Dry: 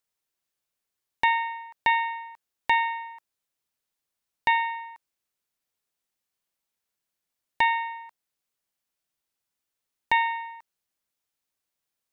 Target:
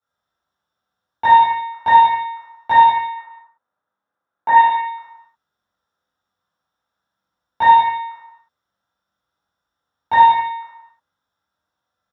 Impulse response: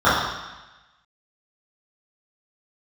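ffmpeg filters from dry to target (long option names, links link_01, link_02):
-filter_complex "[0:a]asettb=1/sr,asplit=3[link_01][link_02][link_03];[link_01]atrim=end=3.074[link_04];[link_02]atrim=start=3.07:end=4.53,asetpts=PTS-STARTPTS,afade=type=in:duration=0.004:curve=qsin,afade=type=out:start_time=1.456:duration=0.004:curve=qsin,acrossover=split=190 2300:gain=0.2 1 0.141[link_05][link_06][link_07];[link_05][link_06][link_07]amix=inputs=3:normalize=0[link_08];[link_03]atrim=start=4.526[link_09];[link_04][link_08]acrossfade=duration=0.004:curve1=hsin:curve2=qsin[link_10];[link_10][link_09]acrossfade=duration=0.004:curve1=qsin:curve2=hsin,aecho=1:1:41|61:0.376|0.596[link_11];[1:a]atrim=start_sample=2205,afade=type=out:start_time=0.38:duration=0.01,atrim=end_sample=17199[link_12];[link_11][link_12]afir=irnorm=-1:irlink=0,volume=-15dB"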